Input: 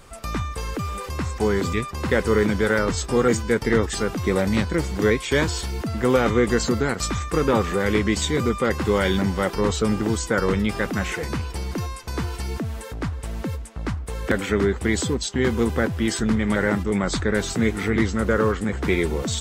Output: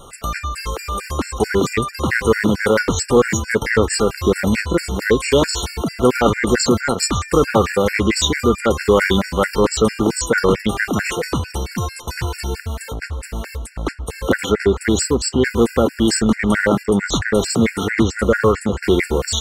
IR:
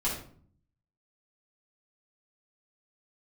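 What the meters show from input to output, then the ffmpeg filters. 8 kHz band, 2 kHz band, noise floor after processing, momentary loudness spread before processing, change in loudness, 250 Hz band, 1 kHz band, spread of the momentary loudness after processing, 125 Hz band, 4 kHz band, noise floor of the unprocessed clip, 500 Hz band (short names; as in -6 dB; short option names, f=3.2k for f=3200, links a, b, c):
+7.5 dB, +5.5 dB, -37 dBFS, 9 LU, +5.0 dB, +4.0 dB, +5.5 dB, 10 LU, +2.5 dB, +7.0 dB, -35 dBFS, +5.5 dB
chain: -af "bass=f=250:g=-4,treble=f=4k:g=1,aeval=exprs='0.501*(cos(1*acos(clip(val(0)/0.501,-1,1)))-cos(1*PI/2))+0.0282*(cos(5*acos(clip(val(0)/0.501,-1,1)))-cos(5*PI/2))':c=same,afftfilt=real='re*gt(sin(2*PI*4.5*pts/sr)*(1-2*mod(floor(b*sr/1024/1400),2)),0)':imag='im*gt(sin(2*PI*4.5*pts/sr)*(1-2*mod(floor(b*sr/1024/1400),2)),0)':win_size=1024:overlap=0.75,volume=7.5dB"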